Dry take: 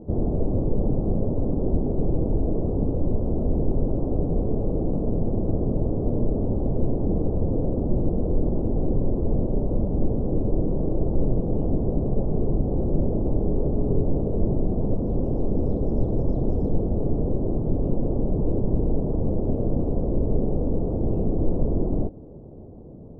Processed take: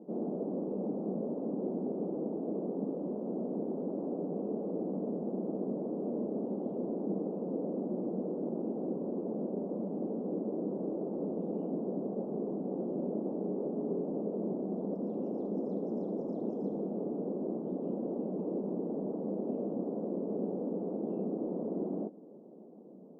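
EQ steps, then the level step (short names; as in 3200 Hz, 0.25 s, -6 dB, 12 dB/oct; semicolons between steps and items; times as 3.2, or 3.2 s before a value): elliptic high-pass 190 Hz, stop band 50 dB; -7.0 dB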